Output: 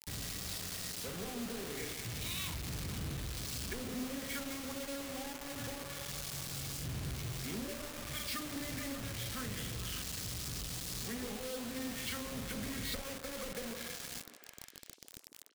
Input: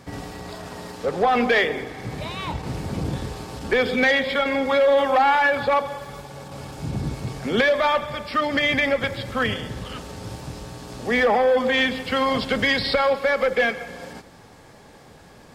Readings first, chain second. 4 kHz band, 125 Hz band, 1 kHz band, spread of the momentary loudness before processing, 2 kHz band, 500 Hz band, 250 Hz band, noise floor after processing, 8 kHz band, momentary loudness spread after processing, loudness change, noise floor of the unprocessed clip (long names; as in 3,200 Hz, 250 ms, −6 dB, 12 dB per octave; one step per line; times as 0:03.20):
−13.0 dB, −10.5 dB, −26.0 dB, 18 LU, −22.5 dB, −24.5 dB, −14.5 dB, −56 dBFS, +3.0 dB, 4 LU, −18.5 dB, −48 dBFS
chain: treble cut that deepens with the level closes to 1,100 Hz, closed at −16 dBFS
double-tracking delay 43 ms −5.5 dB
treble cut that deepens with the level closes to 440 Hz, closed at −16.5 dBFS
guitar amp tone stack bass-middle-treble 6-0-2
in parallel at −8.5 dB: comparator with hysteresis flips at −58 dBFS
on the sum: bit-depth reduction 8 bits, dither none
soft clipping −36.5 dBFS, distortion −19 dB
high-shelf EQ 3,000 Hz +11 dB
notch filter 890 Hz, Q 25
on a send: echo through a band-pass that steps 149 ms, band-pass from 350 Hz, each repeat 0.7 octaves, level −4 dB
on the sum: level +2 dB